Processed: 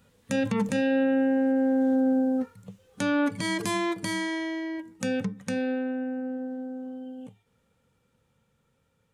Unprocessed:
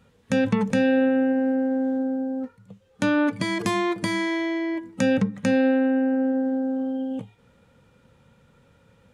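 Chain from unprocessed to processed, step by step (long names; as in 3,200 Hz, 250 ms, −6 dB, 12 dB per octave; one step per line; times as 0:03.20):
source passing by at 0:01.90, 8 m/s, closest 7 metres
high-shelf EQ 6,200 Hz +11.5 dB
brickwall limiter −21.5 dBFS, peak gain reduction 6.5 dB
level +4 dB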